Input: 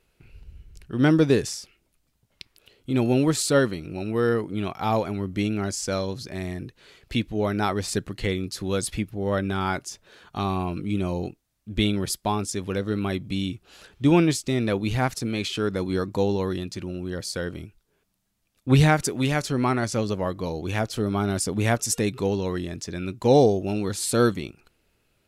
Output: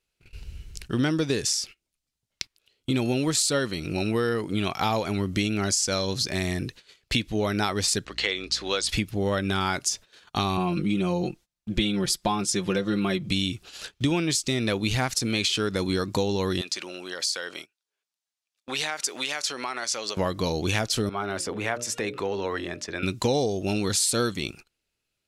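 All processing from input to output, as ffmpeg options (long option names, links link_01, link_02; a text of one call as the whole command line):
ffmpeg -i in.wav -filter_complex "[0:a]asettb=1/sr,asplit=3[link_01][link_02][link_03];[link_01]atrim=end=8.054[link_04];[link_02]atrim=start=8.05:end=8.89,asetpts=PTS-STARTPTS,afade=type=in:duration=0.004:curve=qsin,afade=type=out:start_time=0.836:duration=0.004:curve=qsin,highpass=510,lowpass=4800,aeval=exprs='val(0)+0.00282*(sin(2*PI*60*n/s)+sin(2*PI*2*60*n/s)/2+sin(2*PI*3*60*n/s)/3+sin(2*PI*4*60*n/s)/4+sin(2*PI*5*60*n/s)/5)':channel_layout=same[link_05];[link_03]atrim=start=8.886[link_06];[link_04][link_05]acrossfade=duration=0.004:curve1=hsin:curve2=qsin[link_07];[link_07][link_06]acrossfade=duration=0.004:curve1=qsin:curve2=hsin,asettb=1/sr,asplit=3[link_08][link_09][link_10];[link_08]atrim=end=10.574[link_11];[link_09]atrim=start=10.57:end=13.3,asetpts=PTS-STARTPTS,afade=type=in:duration=0.004:curve=qsin,afade=type=out:start_time=2.726:duration=0.004:curve=qsin,highshelf=frequency=3500:gain=-8.5,aecho=1:1:5.7:0.74,atrim=end_sample=120393[link_12];[link_10]atrim=start=13.296[link_13];[link_11][link_12]acrossfade=duration=0.004:curve1=hsin:curve2=qsin[link_14];[link_14][link_13]acrossfade=duration=0.004:curve1=qsin:curve2=hsin,asettb=1/sr,asplit=3[link_15][link_16][link_17];[link_15]atrim=end=16.614[link_18];[link_16]atrim=start=16.61:end=20.17,asetpts=PTS-STARTPTS,afade=type=in:duration=0.004:curve=qsin,afade=type=out:start_time=3.556:duration=0.004:curve=qsin,highpass=610,highshelf=frequency=9600:gain=-8.5,acompressor=threshold=-38dB:ratio=3:attack=3.2:release=140:knee=1:detection=peak[link_19];[link_17]atrim=start=20.166[link_20];[link_18][link_19]acrossfade=duration=0.004:curve1=hsin:curve2=qsin[link_21];[link_21][link_20]acrossfade=duration=0.004:curve1=qsin:curve2=hsin,asettb=1/sr,asplit=3[link_22][link_23][link_24];[link_22]atrim=end=21.094[link_25];[link_23]atrim=start=21.09:end=23.03,asetpts=PTS-STARTPTS,afade=type=in:duration=0.004:curve=qsin,afade=type=out:start_time=1.936:duration=0.004:curve=qsin,bandreject=frequency=60:width_type=h:width=6,bandreject=frequency=120:width_type=h:width=6,bandreject=frequency=180:width_type=h:width=6,bandreject=frequency=240:width_type=h:width=6,bandreject=frequency=300:width_type=h:width=6,bandreject=frequency=360:width_type=h:width=6,bandreject=frequency=420:width_type=h:width=6,bandreject=frequency=480:width_type=h:width=6,bandreject=frequency=540:width_type=h:width=6,bandreject=frequency=600:width_type=h:width=6,acompressor=threshold=-26dB:ratio=2.5:attack=3.2:release=140:knee=1:detection=peak,acrossover=split=370 2400:gain=0.224 1 0.141[link_26][link_27][link_28];[link_26][link_27][link_28]amix=inputs=3:normalize=0[link_29];[link_24]atrim=start=23.026[link_30];[link_25][link_29]acrossfade=duration=0.004:curve1=hsin:curve2=qsin[link_31];[link_31][link_30]acrossfade=duration=0.004:curve1=qsin:curve2=hsin,agate=range=-22dB:threshold=-48dB:ratio=16:detection=peak,equalizer=frequency=5700:width_type=o:width=2.7:gain=11,acompressor=threshold=-27dB:ratio=6,volume=5dB" out.wav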